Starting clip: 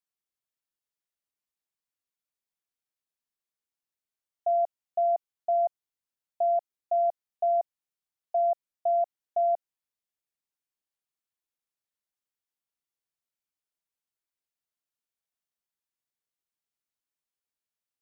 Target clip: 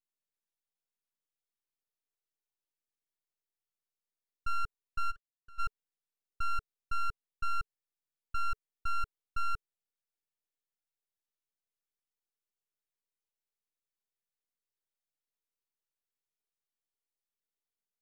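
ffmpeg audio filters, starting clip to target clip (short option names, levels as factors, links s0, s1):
-filter_complex "[0:a]asplit=3[s0][s1][s2];[s0]afade=t=out:st=5.1:d=0.02[s3];[s1]asplit=3[s4][s5][s6];[s4]bandpass=f=300:t=q:w=8,volume=1[s7];[s5]bandpass=f=870:t=q:w=8,volume=0.501[s8];[s6]bandpass=f=2240:t=q:w=8,volume=0.355[s9];[s7][s8][s9]amix=inputs=3:normalize=0,afade=t=in:st=5.1:d=0.02,afade=t=out:st=5.58:d=0.02[s10];[s2]afade=t=in:st=5.58:d=0.02[s11];[s3][s10][s11]amix=inputs=3:normalize=0,aeval=exprs='abs(val(0))':c=same,equalizer=f=430:t=o:w=0.24:g=8.5,volume=0.631"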